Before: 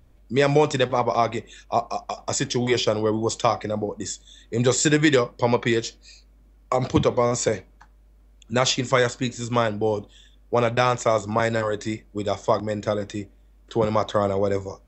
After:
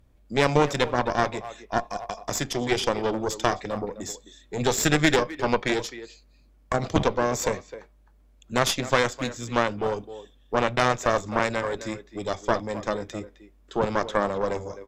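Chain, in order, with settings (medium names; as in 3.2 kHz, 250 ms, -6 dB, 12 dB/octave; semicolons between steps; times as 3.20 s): speakerphone echo 260 ms, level -12 dB; Chebyshev shaper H 4 -10 dB, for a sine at -4 dBFS; trim -4 dB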